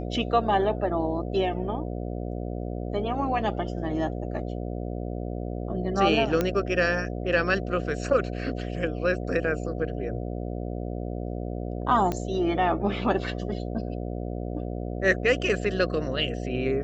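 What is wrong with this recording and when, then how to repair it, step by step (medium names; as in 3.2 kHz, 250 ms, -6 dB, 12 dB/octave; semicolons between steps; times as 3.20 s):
buzz 60 Hz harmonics 12 -32 dBFS
6.41 s: pop -11 dBFS
12.12 s: pop -15 dBFS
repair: de-click; de-hum 60 Hz, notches 12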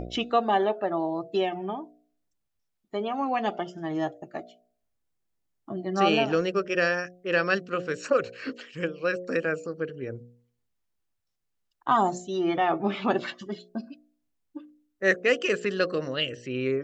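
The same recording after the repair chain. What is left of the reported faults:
nothing left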